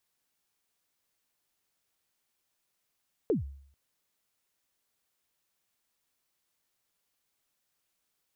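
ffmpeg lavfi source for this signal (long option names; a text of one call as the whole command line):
ffmpeg -f lavfi -i "aevalsrc='0.0891*pow(10,-3*t/0.61)*sin(2*PI*(500*0.134/log(69/500)*(exp(log(69/500)*min(t,0.134)/0.134)-1)+69*max(t-0.134,0)))':duration=0.44:sample_rate=44100" out.wav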